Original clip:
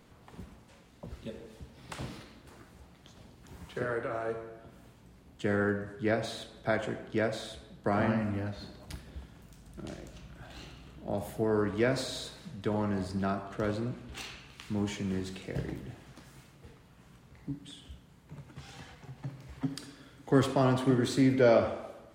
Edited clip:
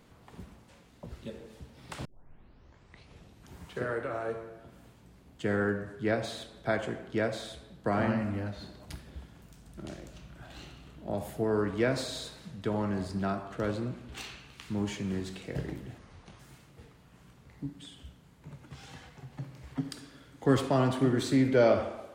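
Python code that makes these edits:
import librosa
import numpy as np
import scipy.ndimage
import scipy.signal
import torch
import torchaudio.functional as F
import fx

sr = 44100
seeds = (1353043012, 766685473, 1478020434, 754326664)

y = fx.edit(x, sr, fx.tape_start(start_s=2.05, length_s=1.49),
    fx.speed_span(start_s=15.98, length_s=0.27, speed=0.65), tone=tone)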